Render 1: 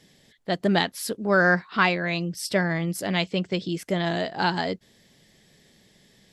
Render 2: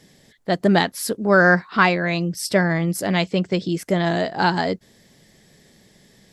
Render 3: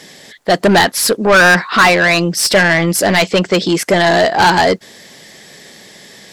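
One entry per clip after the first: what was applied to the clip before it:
parametric band 3,100 Hz −5 dB 1 octave; level +5.5 dB
mid-hump overdrive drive 25 dB, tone 7,100 Hz, clips at −1 dBFS

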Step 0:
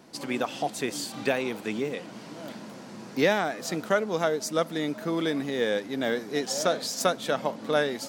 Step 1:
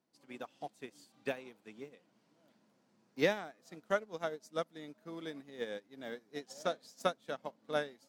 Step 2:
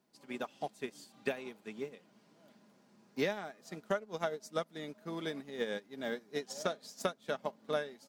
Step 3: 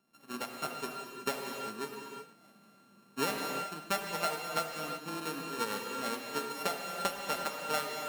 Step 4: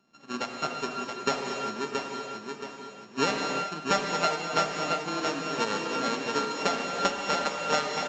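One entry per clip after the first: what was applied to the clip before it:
expander for the loud parts 2.5 to 1, over −35 dBFS; level −5.5 dB
comb filter 4.9 ms, depth 31%; downward compressor 6 to 1, threshold −36 dBFS, peak gain reduction 12 dB; level +6 dB
samples sorted by size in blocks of 32 samples; reverb whose tail is shaped and stops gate 400 ms flat, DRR 1.5 dB
repeating echo 675 ms, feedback 39%, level −5 dB; downsampling to 16,000 Hz; level +6.5 dB

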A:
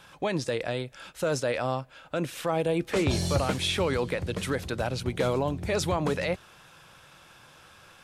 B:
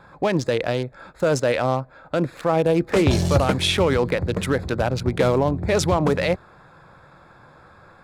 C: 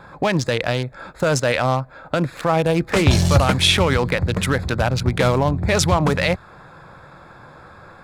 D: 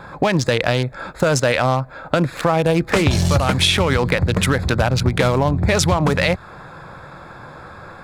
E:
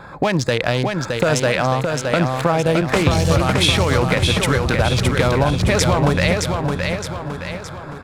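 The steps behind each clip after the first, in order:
adaptive Wiener filter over 15 samples; level +8 dB
dynamic equaliser 390 Hz, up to −8 dB, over −33 dBFS, Q 0.78; level +6 dB
downward compressor, threshold −18 dBFS, peak gain reduction 9.5 dB; level +5.5 dB
repeating echo 617 ms, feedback 48%, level −4.5 dB; level −1 dB

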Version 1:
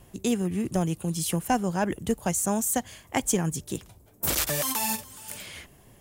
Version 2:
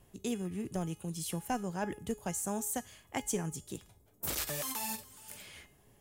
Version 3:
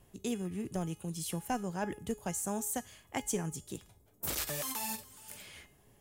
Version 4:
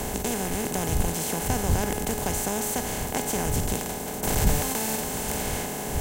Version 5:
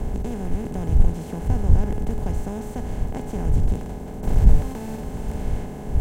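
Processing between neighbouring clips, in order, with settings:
tuned comb filter 420 Hz, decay 0.44 s, mix 70%
no processing that can be heard
compressor on every frequency bin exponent 0.2; wind on the microphone 84 Hz −30 dBFS; harmonic generator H 8 −44 dB, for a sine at −3 dBFS
spectral tilt −4 dB per octave; level −7.5 dB

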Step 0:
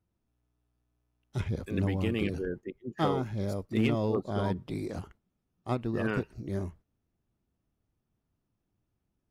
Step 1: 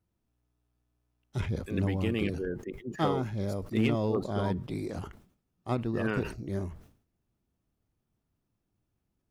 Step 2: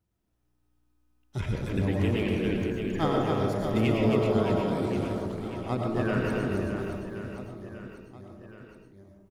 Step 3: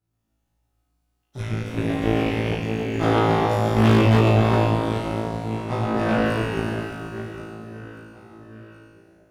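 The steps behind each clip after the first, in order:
level that may fall only so fast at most 110 dB per second
reverse bouncing-ball delay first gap 270 ms, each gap 1.3×, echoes 5; comb and all-pass reverb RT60 0.69 s, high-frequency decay 0.35×, pre-delay 70 ms, DRR 1.5 dB
flanger 0.71 Hz, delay 6.6 ms, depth 9.6 ms, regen −53%; flutter between parallel walls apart 3.1 metres, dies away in 1.4 s; harmonic generator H 4 −9 dB, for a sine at −9.5 dBFS

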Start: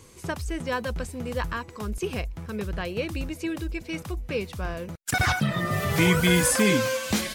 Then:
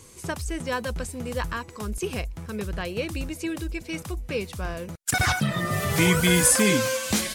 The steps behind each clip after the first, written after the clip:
parametric band 9,100 Hz +6 dB 1.4 octaves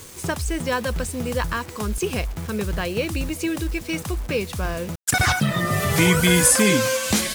in parallel at −1 dB: downward compressor, threshold −31 dBFS, peak gain reduction 15.5 dB
on the sum: bit reduction 7 bits
level +1.5 dB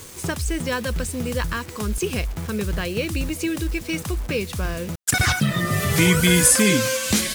dynamic equaliser 810 Hz, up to −6 dB, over −36 dBFS, Q 1.1
level +1 dB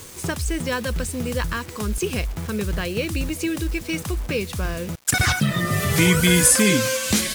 surface crackle 380 per second −40 dBFS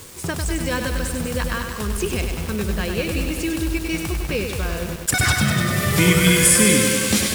notch filter 6,300 Hz, Q 22
feedback echo at a low word length 99 ms, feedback 80%, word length 6 bits, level −5 dB

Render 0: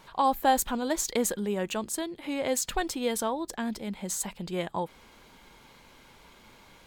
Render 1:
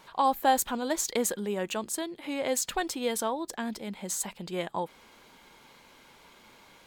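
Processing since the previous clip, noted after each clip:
low-shelf EQ 120 Hz −11.5 dB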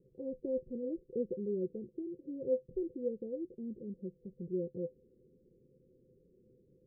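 Chebyshev low-pass with heavy ripple 530 Hz, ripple 9 dB
level +1.5 dB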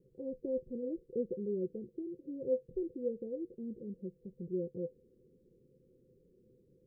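tuned comb filter 470 Hz, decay 0.64 s, mix 60%
level +7.5 dB

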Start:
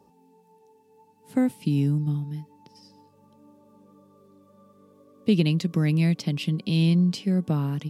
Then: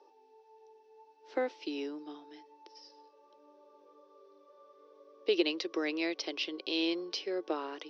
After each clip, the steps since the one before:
Chebyshev band-pass filter 330–5,800 Hz, order 5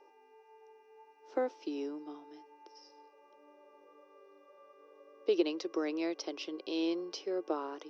flat-topped bell 2,800 Hz −9 dB
hum with harmonics 400 Hz, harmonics 7, −73 dBFS 0 dB per octave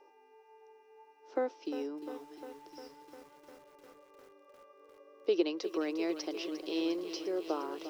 feedback echo at a low word length 352 ms, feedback 80%, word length 9 bits, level −11.5 dB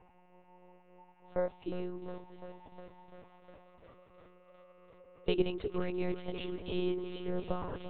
one-pitch LPC vocoder at 8 kHz 180 Hz

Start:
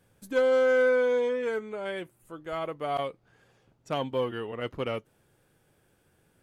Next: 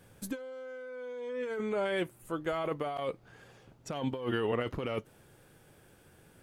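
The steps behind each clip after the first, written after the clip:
compressor whose output falls as the input rises −36 dBFS, ratio −1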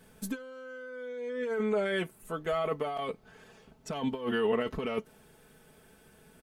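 comb filter 4.6 ms, depth 71%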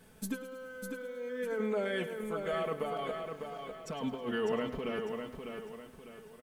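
speech leveller within 3 dB 2 s
on a send: repeating echo 601 ms, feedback 38%, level −6 dB
on the sum: feedback echo at a low word length 106 ms, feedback 55%, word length 9 bits, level −13 dB
level −4 dB

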